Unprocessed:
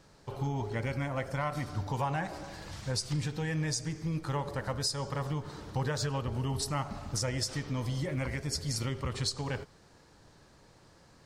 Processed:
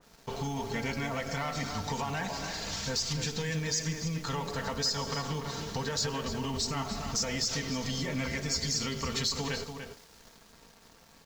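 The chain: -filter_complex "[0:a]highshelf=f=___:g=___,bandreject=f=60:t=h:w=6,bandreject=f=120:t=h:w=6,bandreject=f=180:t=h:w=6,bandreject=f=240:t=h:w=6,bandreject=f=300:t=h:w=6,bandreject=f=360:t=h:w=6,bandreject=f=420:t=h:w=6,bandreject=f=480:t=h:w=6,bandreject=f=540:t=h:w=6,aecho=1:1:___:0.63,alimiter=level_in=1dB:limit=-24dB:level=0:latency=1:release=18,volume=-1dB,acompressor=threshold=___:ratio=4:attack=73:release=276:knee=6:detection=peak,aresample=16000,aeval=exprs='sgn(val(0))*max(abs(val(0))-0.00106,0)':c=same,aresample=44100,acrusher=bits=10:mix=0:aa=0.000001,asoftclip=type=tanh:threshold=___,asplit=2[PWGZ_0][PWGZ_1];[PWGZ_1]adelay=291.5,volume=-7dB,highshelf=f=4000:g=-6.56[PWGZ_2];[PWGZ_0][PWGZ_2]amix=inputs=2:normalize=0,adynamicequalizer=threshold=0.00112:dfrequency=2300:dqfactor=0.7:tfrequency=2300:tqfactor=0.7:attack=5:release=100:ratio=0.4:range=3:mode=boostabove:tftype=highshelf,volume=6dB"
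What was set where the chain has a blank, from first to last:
5600, 6.5, 4.4, -39dB, -31dB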